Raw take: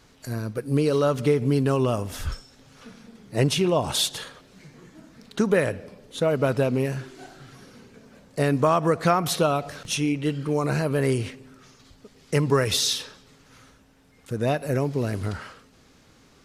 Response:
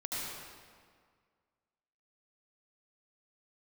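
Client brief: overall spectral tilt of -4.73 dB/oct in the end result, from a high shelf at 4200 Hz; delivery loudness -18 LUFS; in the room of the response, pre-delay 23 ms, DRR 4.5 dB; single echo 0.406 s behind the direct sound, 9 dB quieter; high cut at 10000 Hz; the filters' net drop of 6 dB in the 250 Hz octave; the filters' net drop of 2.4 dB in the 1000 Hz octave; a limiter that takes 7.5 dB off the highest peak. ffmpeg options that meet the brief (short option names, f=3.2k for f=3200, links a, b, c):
-filter_complex "[0:a]lowpass=10k,equalizer=f=250:t=o:g=-8.5,equalizer=f=1k:t=o:g=-3,highshelf=f=4.2k:g=3.5,alimiter=limit=-17.5dB:level=0:latency=1,aecho=1:1:406:0.355,asplit=2[a][b];[1:a]atrim=start_sample=2205,adelay=23[c];[b][c]afir=irnorm=-1:irlink=0,volume=-8.5dB[d];[a][d]amix=inputs=2:normalize=0,volume=9.5dB"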